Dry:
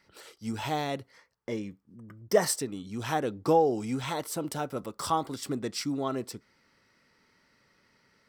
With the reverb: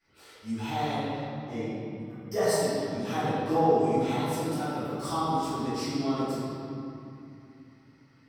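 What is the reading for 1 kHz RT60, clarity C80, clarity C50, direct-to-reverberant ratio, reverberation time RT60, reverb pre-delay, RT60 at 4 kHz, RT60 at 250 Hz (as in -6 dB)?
2.7 s, -2.5 dB, -4.5 dB, -18.5 dB, 2.7 s, 3 ms, 1.8 s, 3.9 s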